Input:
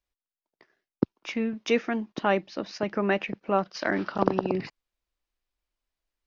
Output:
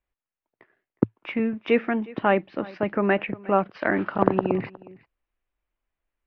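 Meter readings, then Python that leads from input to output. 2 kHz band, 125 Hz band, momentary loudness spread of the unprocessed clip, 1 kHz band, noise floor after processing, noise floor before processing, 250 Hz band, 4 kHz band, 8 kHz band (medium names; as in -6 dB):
+3.0 dB, +4.0 dB, 6 LU, +3.5 dB, under -85 dBFS, under -85 dBFS, +3.5 dB, -4.0 dB, no reading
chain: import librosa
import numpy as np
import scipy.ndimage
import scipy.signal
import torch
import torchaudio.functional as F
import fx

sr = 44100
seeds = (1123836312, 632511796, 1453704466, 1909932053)

p1 = scipy.signal.sosfilt(scipy.signal.butter(4, 2700.0, 'lowpass', fs=sr, output='sos'), x)
p2 = fx.peak_eq(p1, sr, hz=110.0, db=6.0, octaves=0.33)
p3 = p2 + fx.echo_single(p2, sr, ms=362, db=-21.5, dry=0)
y = p3 * 10.0 ** (3.5 / 20.0)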